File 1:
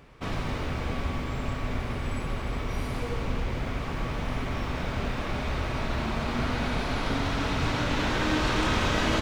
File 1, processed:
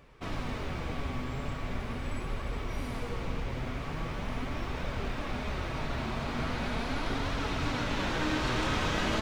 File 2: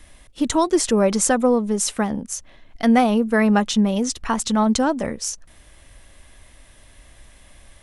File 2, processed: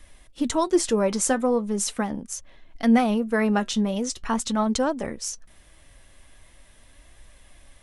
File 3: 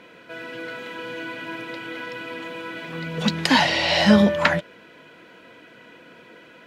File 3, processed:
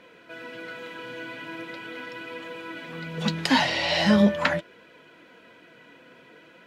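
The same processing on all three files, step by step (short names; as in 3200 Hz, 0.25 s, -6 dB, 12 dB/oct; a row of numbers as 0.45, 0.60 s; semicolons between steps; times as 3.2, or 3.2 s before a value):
flange 0.41 Hz, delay 1.6 ms, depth 6.5 ms, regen +68%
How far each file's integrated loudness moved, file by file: -4.5, -4.5, -3.5 LU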